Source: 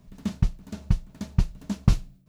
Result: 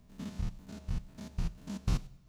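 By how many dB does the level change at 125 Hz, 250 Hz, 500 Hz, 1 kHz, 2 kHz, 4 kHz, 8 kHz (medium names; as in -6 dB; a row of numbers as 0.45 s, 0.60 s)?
-11.5 dB, -10.5 dB, -7.5 dB, -8.0 dB, -7.0 dB, -7.0 dB, no reading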